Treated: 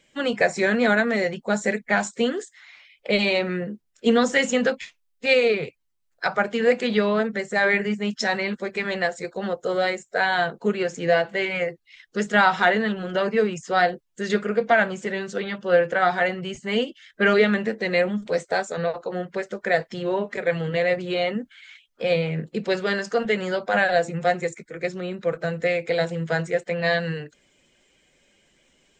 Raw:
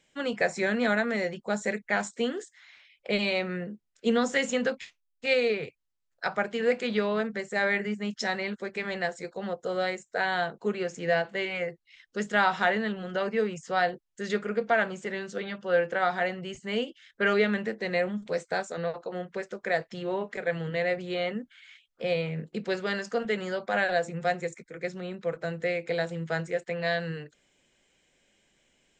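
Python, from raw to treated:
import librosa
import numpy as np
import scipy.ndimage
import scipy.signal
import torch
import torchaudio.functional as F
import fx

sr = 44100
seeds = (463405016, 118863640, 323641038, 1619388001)

y = fx.spec_quant(x, sr, step_db=15)
y = F.gain(torch.from_numpy(y), 6.5).numpy()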